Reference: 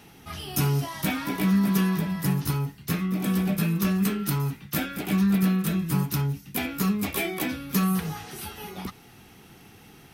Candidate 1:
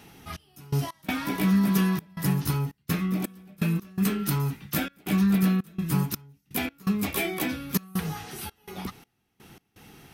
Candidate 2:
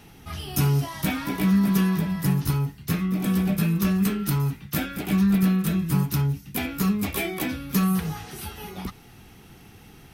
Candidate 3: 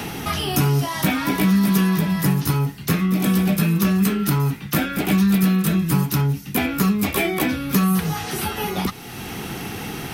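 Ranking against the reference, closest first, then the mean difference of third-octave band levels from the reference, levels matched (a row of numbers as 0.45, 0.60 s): 2, 3, 1; 1.5, 4.0, 6.0 dB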